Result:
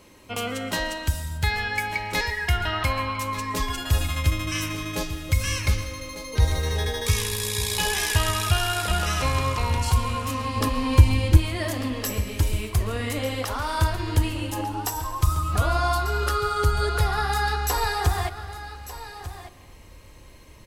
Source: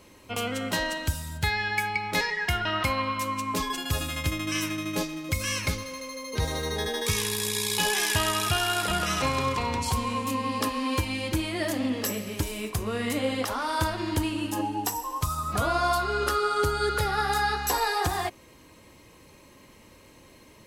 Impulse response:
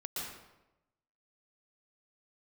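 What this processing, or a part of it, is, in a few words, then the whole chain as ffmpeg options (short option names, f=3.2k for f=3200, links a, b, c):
compressed reverb return: -filter_complex "[0:a]asplit=2[a][b];[1:a]atrim=start_sample=2205[c];[b][c]afir=irnorm=-1:irlink=0,acompressor=threshold=-27dB:ratio=6,volume=-12dB[d];[a][d]amix=inputs=2:normalize=0,asettb=1/sr,asplit=3[e][f][g];[e]atrim=end=10.564[h];[f]atrim=start=10.56:end=11.37,asetpts=PTS-STARTPTS,afade=t=in:d=0.004:c=qsin,afade=t=out:st=0.806:d=0.004:c=qsin,lowshelf=f=420:g=8.5[i];[g]atrim=start=11.366[j];[h][i]acrossfade=d=0.004:c1=hsin:c2=qsin[k];[k][j]acrossfade=d=0.004:c1=qsin:c2=hsin,aecho=1:1:1196:0.211,asubboost=boost=5.5:cutoff=85"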